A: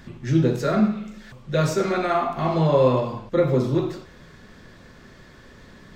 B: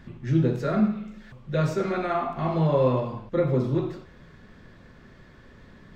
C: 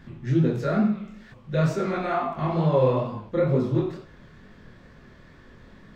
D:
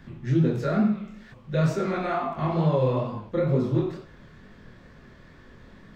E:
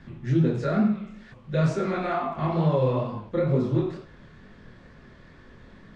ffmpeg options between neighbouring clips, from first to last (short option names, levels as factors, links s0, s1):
-af "bass=f=250:g=3,treble=f=4000:g=-8,volume=0.596"
-af "flanger=delay=19:depth=7.9:speed=2.2,volume=1.5"
-filter_complex "[0:a]acrossover=split=280|3000[s0][s1][s2];[s1]acompressor=threshold=0.0631:ratio=2.5[s3];[s0][s3][s2]amix=inputs=3:normalize=0"
-ar 22050 -c:a nellymoser